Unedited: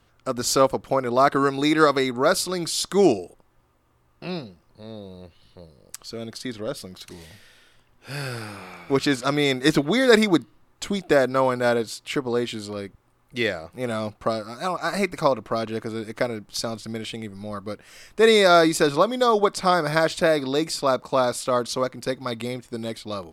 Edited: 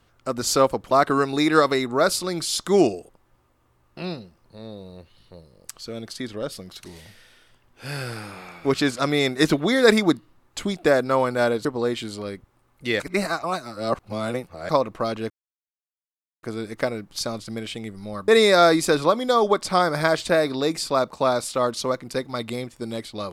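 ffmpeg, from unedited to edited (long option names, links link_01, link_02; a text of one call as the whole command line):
ffmpeg -i in.wav -filter_complex "[0:a]asplit=7[link_01][link_02][link_03][link_04][link_05][link_06][link_07];[link_01]atrim=end=0.912[link_08];[link_02]atrim=start=1.158:end=11.902[link_09];[link_03]atrim=start=12.158:end=13.512[link_10];[link_04]atrim=start=13.508:end=15.202,asetpts=PTS-STARTPTS,areverse[link_11];[link_05]atrim=start=15.198:end=15.81,asetpts=PTS-STARTPTS,afade=type=out:start_time=0.608:duration=0.004:curve=hsin,apad=pad_dur=1.13[link_12];[link_06]atrim=start=15.81:end=17.662,asetpts=PTS-STARTPTS,afade=type=in:duration=0.004:curve=hsin[link_13];[link_07]atrim=start=18.198[link_14];[link_08][link_09]acrossfade=duration=0.004:curve1=hsin:curve2=hsin[link_15];[link_15][link_10]acrossfade=duration=0.004:curve1=hsin:curve2=hsin[link_16];[link_16][link_11]acrossfade=duration=0.004:curve1=hsin:curve2=hsin[link_17];[link_12][link_13]concat=n=2:v=0:a=1[link_18];[link_17][link_18]acrossfade=duration=0.004:curve1=hsin:curve2=hsin[link_19];[link_19][link_14]acrossfade=duration=0.004:curve1=hsin:curve2=hsin" out.wav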